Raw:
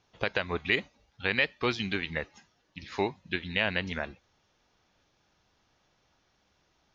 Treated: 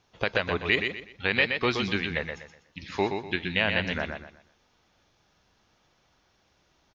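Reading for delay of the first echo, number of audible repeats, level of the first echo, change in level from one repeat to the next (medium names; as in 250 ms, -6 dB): 123 ms, 3, -6.0 dB, -10.5 dB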